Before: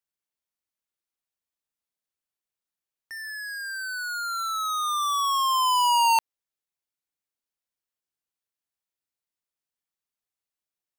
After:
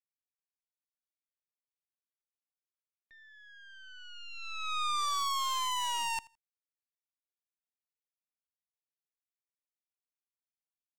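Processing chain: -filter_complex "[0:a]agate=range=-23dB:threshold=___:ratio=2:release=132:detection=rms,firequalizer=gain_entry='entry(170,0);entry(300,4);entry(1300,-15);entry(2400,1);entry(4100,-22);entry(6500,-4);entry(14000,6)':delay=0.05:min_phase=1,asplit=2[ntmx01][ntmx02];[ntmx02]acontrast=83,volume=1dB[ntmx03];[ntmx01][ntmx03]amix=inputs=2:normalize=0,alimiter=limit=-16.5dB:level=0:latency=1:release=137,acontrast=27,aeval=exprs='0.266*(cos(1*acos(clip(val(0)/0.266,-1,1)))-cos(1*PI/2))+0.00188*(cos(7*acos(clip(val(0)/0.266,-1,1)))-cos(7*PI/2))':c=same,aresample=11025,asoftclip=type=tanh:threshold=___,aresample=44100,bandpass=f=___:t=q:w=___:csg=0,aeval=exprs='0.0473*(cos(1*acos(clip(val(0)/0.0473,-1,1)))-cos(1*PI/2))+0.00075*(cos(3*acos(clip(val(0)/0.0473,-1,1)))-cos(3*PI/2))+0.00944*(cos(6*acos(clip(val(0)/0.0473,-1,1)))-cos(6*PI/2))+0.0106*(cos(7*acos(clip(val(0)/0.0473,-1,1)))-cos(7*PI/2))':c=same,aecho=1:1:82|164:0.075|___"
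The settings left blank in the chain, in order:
-24dB, -28dB, 1800, 1, 0.015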